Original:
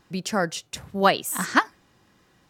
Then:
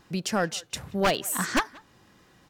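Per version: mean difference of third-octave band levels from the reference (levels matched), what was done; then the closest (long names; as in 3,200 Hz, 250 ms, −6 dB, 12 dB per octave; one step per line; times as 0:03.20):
4.5 dB: wavefolder on the positive side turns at −17 dBFS
in parallel at −3 dB: downward compressor, threshold −35 dBFS, peak gain reduction 20 dB
on the sum: soft clipping −10.5 dBFS, distortion −15 dB
far-end echo of a speakerphone 180 ms, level −21 dB
level −2 dB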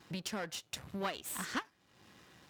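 7.5 dB: gain on one half-wave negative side −12 dB
high-pass filter 66 Hz
parametric band 3,200 Hz +3.5 dB 1.4 octaves
downward compressor 3 to 1, threshold −45 dBFS, peak gain reduction 21.5 dB
level +3.5 dB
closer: first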